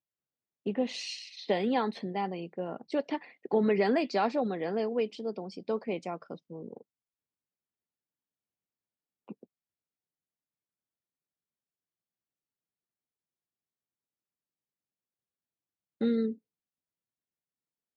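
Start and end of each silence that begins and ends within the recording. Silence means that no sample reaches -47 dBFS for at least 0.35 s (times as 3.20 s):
6.81–9.28 s
9.44–16.01 s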